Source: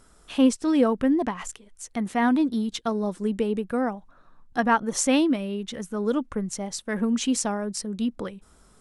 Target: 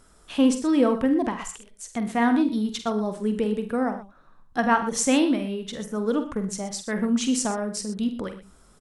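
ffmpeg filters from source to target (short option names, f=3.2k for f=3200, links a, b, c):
-af "aecho=1:1:47|75|101|122:0.335|0.158|0.106|0.188"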